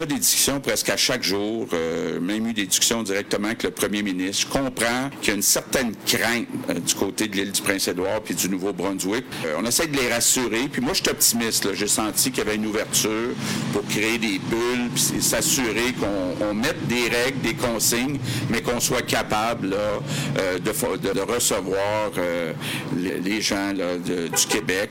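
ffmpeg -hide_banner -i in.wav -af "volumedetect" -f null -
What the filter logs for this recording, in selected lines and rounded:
mean_volume: -23.2 dB
max_volume: -2.7 dB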